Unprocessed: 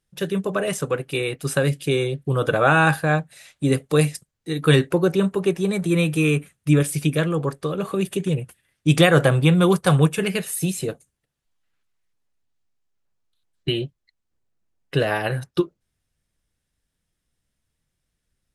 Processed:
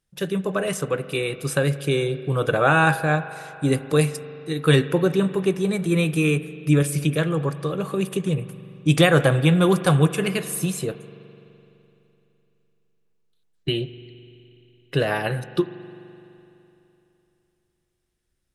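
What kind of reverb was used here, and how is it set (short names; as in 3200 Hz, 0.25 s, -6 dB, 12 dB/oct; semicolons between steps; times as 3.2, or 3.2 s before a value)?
spring tank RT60 3.1 s, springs 42 ms, chirp 45 ms, DRR 13.5 dB; gain -1 dB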